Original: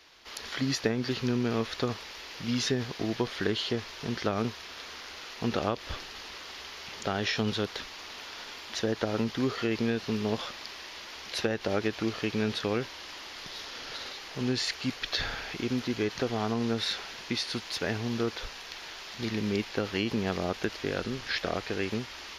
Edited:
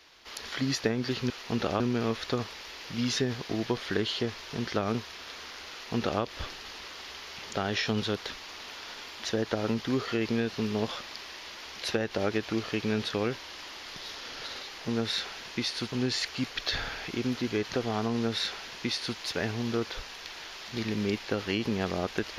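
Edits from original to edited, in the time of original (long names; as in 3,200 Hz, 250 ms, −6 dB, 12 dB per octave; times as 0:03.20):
0:05.22–0:05.72: duplicate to 0:01.30
0:16.61–0:17.65: duplicate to 0:14.38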